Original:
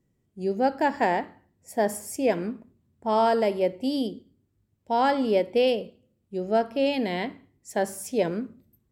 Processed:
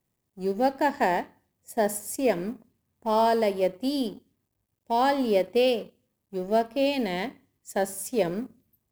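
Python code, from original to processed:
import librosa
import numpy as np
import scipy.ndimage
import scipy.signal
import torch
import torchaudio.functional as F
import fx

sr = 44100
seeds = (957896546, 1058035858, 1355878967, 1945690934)

y = fx.law_mismatch(x, sr, coded='A')
y = fx.high_shelf(y, sr, hz=8900.0, db=9.0)
y = fx.notch(y, sr, hz=1400.0, q=9.4)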